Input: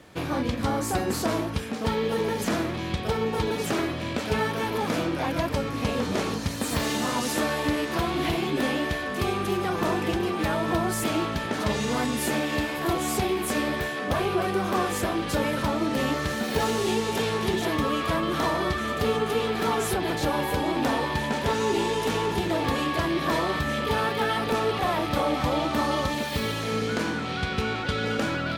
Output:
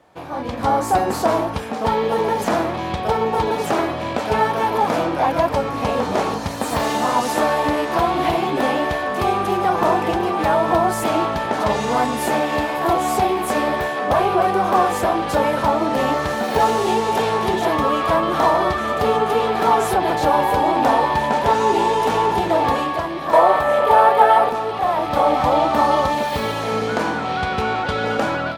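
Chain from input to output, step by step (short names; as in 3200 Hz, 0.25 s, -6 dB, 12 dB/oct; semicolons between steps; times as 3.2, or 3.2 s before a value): 23.33–24.49 EQ curve 250 Hz 0 dB, 590 Hz +14 dB, 5600 Hz +1 dB, 9300 Hz +8 dB; AGC gain up to 12 dB; bell 800 Hz +13 dB 1.4 oct; gain -10 dB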